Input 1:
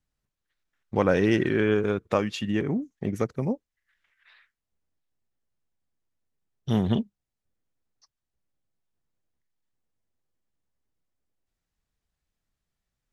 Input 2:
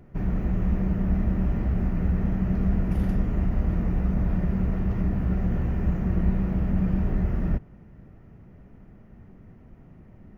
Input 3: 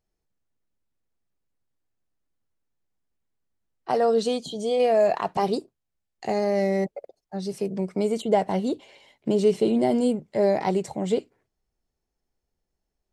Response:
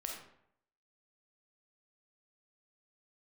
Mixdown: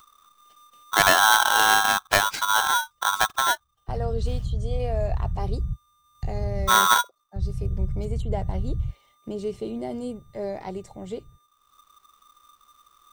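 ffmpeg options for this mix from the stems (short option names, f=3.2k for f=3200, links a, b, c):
-filter_complex "[0:a]lowshelf=f=85:g=11,aeval=exprs='val(0)*sgn(sin(2*PI*1200*n/s))':c=same,volume=3dB[a];[1:a]lowshelf=f=170:t=q:w=3:g=9,acrossover=split=170[b][c];[c]acompressor=threshold=-56dB:ratio=2[d];[b][d]amix=inputs=2:normalize=0,adelay=1550,volume=-12dB,asplit=3[e][f][g];[e]atrim=end=6.69,asetpts=PTS-STARTPTS,afade=t=out:st=6.686:d=0.004:c=hsin[h];[f]atrim=start=6.69:end=7.36,asetpts=PTS-STARTPTS,volume=0[i];[g]atrim=start=7.36,asetpts=PTS-STARTPTS,afade=t=in:d=0.004:c=hsin[j];[h][i][j]concat=n=3:v=0:a=1[k];[2:a]volume=-10dB,asplit=2[l][m];[m]apad=whole_len=525926[n];[k][n]sidechaingate=range=-52dB:threshold=-54dB:ratio=16:detection=peak[o];[a][o][l]amix=inputs=3:normalize=0,acompressor=mode=upward:threshold=-44dB:ratio=2.5"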